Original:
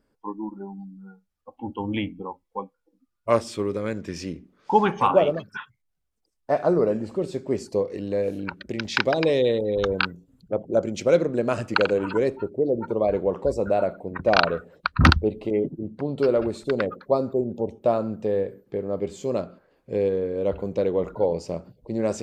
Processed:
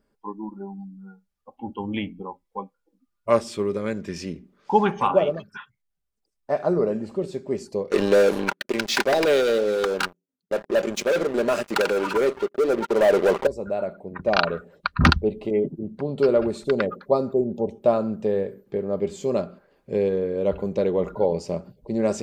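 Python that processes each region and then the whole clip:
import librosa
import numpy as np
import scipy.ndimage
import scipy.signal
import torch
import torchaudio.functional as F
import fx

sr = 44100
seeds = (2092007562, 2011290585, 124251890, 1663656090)

y = fx.chain(x, sr, fx.highpass(hz=330.0, slope=12),
    fx.leveller(passes=5), at=(7.91, 13.47))
y = y + 0.31 * np.pad(y, (int(5.0 * sr / 1000.0), 0))[:len(y)]
y = fx.rider(y, sr, range_db=10, speed_s=2.0)
y = y * 10.0 ** (-8.5 / 20.0)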